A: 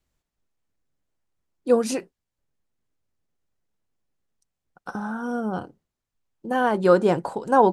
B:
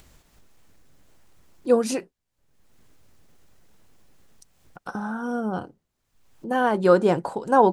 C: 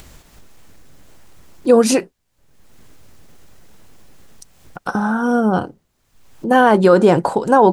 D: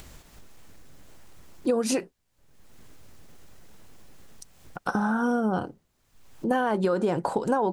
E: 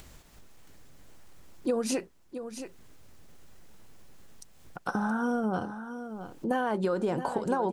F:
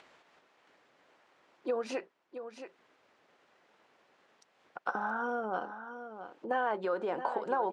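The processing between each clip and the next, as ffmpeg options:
ffmpeg -i in.wav -af "acompressor=mode=upward:threshold=-35dB:ratio=2.5" out.wav
ffmpeg -i in.wav -af "alimiter=level_in=12.5dB:limit=-1dB:release=50:level=0:latency=1,volume=-1dB" out.wav
ffmpeg -i in.wav -af "acompressor=threshold=-16dB:ratio=12,volume=-4.5dB" out.wav
ffmpeg -i in.wav -af "aecho=1:1:673:0.299,volume=-4dB" out.wav
ffmpeg -i in.wav -af "highpass=500,lowpass=2700" out.wav

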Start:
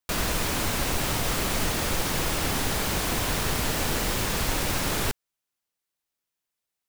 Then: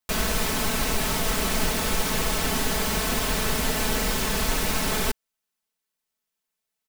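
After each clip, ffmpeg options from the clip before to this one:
ffmpeg -i in.wav -af "aecho=1:1:4.6:0.65" out.wav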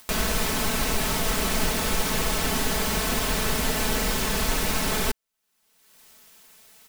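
ffmpeg -i in.wav -af "acompressor=mode=upward:threshold=-28dB:ratio=2.5" out.wav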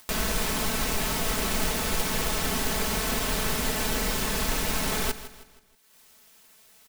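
ffmpeg -i in.wav -af "acrusher=bits=2:mode=log:mix=0:aa=0.000001,aecho=1:1:159|318|477|636:0.2|0.0838|0.0352|0.0148,volume=-3dB" out.wav

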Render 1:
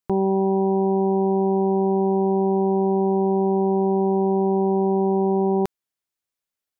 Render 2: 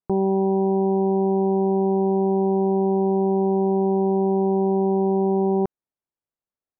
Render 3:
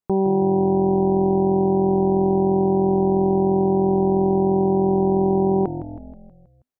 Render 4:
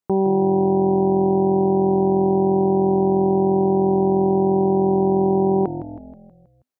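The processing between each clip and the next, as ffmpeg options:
ffmpeg -i in.wav -af "lowpass=1000" out.wav
ffmpeg -i in.wav -filter_complex "[0:a]asplit=7[link_01][link_02][link_03][link_04][link_05][link_06][link_07];[link_02]adelay=160,afreqshift=-43,volume=-11dB[link_08];[link_03]adelay=320,afreqshift=-86,volume=-16.2dB[link_09];[link_04]adelay=480,afreqshift=-129,volume=-21.4dB[link_10];[link_05]adelay=640,afreqshift=-172,volume=-26.6dB[link_11];[link_06]adelay=800,afreqshift=-215,volume=-31.8dB[link_12];[link_07]adelay=960,afreqshift=-258,volume=-37dB[link_13];[link_01][link_08][link_09][link_10][link_11][link_12][link_13]amix=inputs=7:normalize=0,volume=1.5dB" out.wav
ffmpeg -i in.wav -af "highpass=frequency=120:poles=1,volume=1.5dB" out.wav

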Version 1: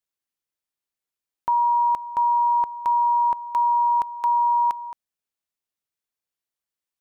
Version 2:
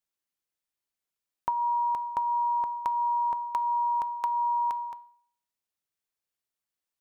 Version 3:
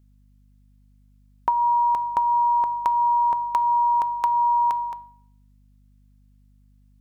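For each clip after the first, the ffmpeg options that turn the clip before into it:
ffmpeg -i in.wav -af "acompressor=threshold=-22dB:ratio=6,bandreject=frequency=238.9:width_type=h:width=4,bandreject=frequency=477.8:width_type=h:width=4,bandreject=frequency=716.7:width_type=h:width=4,bandreject=frequency=955.6:width_type=h:width=4,bandreject=frequency=1194.5:width_type=h:width=4,bandreject=frequency=1433.4:width_type=h:width=4,bandreject=frequency=1672.3:width_type=h:width=4,bandreject=frequency=1911.2:width_type=h:width=4,bandreject=frequency=2150.1:width_type=h:width=4,bandreject=frequency=2389:width_type=h:width=4,bandreject=frequency=2627.9:width_type=h:width=4,bandreject=frequency=2866.8:width_type=h:width=4,bandreject=frequency=3105.7:width_type=h:width=4,bandreject=frequency=3344.6:width_type=h:width=4,bandreject=frequency=3583.5:width_type=h:width=4,bandreject=frequency=3822.4:width_type=h:width=4,bandreject=frequency=4061.3:width_type=h:width=4,bandreject=frequency=4300.2:width_type=h:width=4,bandreject=frequency=4539.1:width_type=h:width=4,volume=-1dB" out.wav
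ffmpeg -i in.wav -af "aeval=exprs='val(0)+0.000794*(sin(2*PI*50*n/s)+sin(2*PI*2*50*n/s)/2+sin(2*PI*3*50*n/s)/3+sin(2*PI*4*50*n/s)/4+sin(2*PI*5*50*n/s)/5)':channel_layout=same,volume=7dB" out.wav

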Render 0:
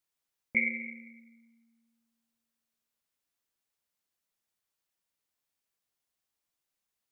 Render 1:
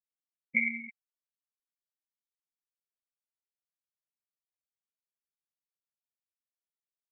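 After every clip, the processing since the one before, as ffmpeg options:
ffmpeg -i in.wav -af "afftfilt=real='re*gte(hypot(re,im),0.0562)':imag='im*gte(hypot(re,im),0.0562)':win_size=1024:overlap=0.75" out.wav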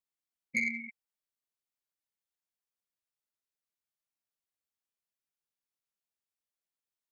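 ffmpeg -i in.wav -af "asoftclip=type=tanh:threshold=-22.5dB" out.wav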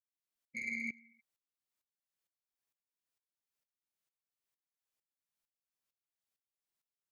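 ffmpeg -i in.wav -filter_complex "[0:a]asplit=2[link_01][link_02];[link_02]aecho=0:1:50|105|165.5|232|305.3:0.631|0.398|0.251|0.158|0.1[link_03];[link_01][link_03]amix=inputs=2:normalize=0,aeval=exprs='val(0)*pow(10,-20*if(lt(mod(-2.2*n/s,1),2*abs(-2.2)/1000),1-mod(-2.2*n/s,1)/(2*abs(-2.2)/1000),(mod(-2.2*n/s,1)-2*abs(-2.2)/1000)/(1-2*abs(-2.2)/1000))/20)':channel_layout=same,volume=2.5dB" out.wav

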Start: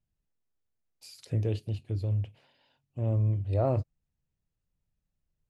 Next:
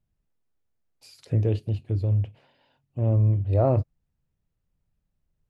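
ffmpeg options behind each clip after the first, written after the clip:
ffmpeg -i in.wav -af "highshelf=frequency=2700:gain=-9.5,volume=6dB" out.wav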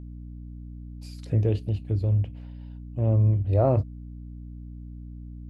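ffmpeg -i in.wav -af "aeval=exprs='val(0)+0.0126*(sin(2*PI*60*n/s)+sin(2*PI*2*60*n/s)/2+sin(2*PI*3*60*n/s)/3+sin(2*PI*4*60*n/s)/4+sin(2*PI*5*60*n/s)/5)':channel_layout=same" out.wav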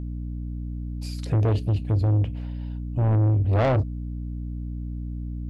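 ffmpeg -i in.wav -af "asoftclip=type=tanh:threshold=-26dB,volume=8.5dB" out.wav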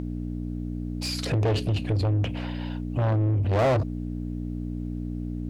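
ffmpeg -i in.wav -filter_complex "[0:a]asplit=2[link_01][link_02];[link_02]highpass=frequency=720:poles=1,volume=22dB,asoftclip=type=tanh:threshold=-17dB[link_03];[link_01][link_03]amix=inputs=2:normalize=0,lowpass=frequency=4700:poles=1,volume=-6dB" out.wav

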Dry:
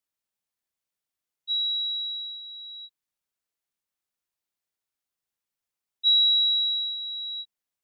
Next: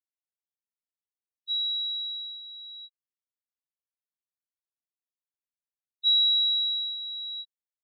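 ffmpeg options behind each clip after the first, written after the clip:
ffmpeg -i in.wav -af "afftfilt=real='re*gte(hypot(re,im),0.0178)':imag='im*gte(hypot(re,im),0.0178)':win_size=1024:overlap=0.75,volume=-2dB" out.wav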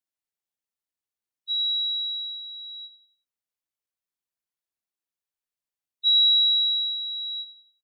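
ffmpeg -i in.wav -af "aecho=1:1:91|182|273|364:0.2|0.0818|0.0335|0.0138,volume=2dB" out.wav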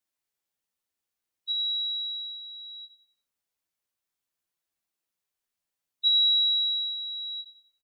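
ffmpeg -i in.wav -filter_complex "[0:a]asplit=2[link_01][link_02];[link_02]adelay=12,volume=-4.5dB[link_03];[link_01][link_03]amix=inputs=2:normalize=0,volume=3.5dB" out.wav

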